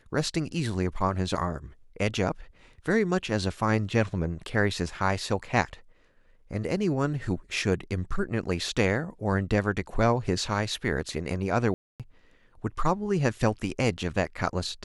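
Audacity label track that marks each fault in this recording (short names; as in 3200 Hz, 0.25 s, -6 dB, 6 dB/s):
11.740000	12.000000	gap 0.257 s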